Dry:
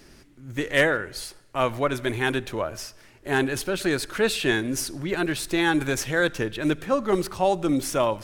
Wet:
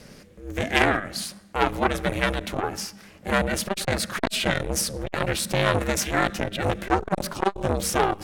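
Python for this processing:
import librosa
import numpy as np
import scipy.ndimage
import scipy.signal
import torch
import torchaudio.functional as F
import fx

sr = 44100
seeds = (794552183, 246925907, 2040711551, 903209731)

y = x * np.sin(2.0 * np.pi * 200.0 * np.arange(len(x)) / sr)
y = fx.transformer_sat(y, sr, knee_hz=1200.0)
y = y * 10.0 ** (7.0 / 20.0)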